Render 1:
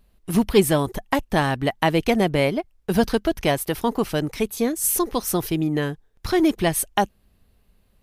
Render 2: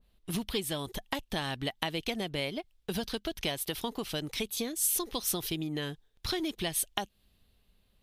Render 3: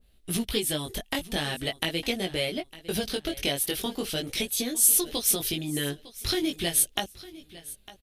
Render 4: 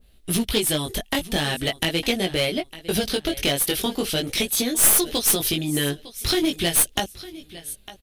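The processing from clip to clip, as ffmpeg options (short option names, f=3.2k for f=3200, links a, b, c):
-af "equalizer=f=3.5k:t=o:w=0.78:g=8.5,acompressor=threshold=-23dB:ratio=6,adynamicequalizer=threshold=0.00794:dfrequency=2200:dqfactor=0.7:tfrequency=2200:tqfactor=0.7:attack=5:release=100:ratio=0.375:range=3:mode=boostabove:tftype=highshelf,volume=-8dB"
-af "flanger=delay=16:depth=5.2:speed=0.42,equalizer=f=160:t=o:w=0.67:g=-4,equalizer=f=1k:t=o:w=0.67:g=-8,equalizer=f=10k:t=o:w=0.67:g=5,aecho=1:1:905|1810:0.126|0.0315,volume=8.5dB"
-af "aeval=exprs='clip(val(0),-1,0.0562)':c=same,volume=6.5dB"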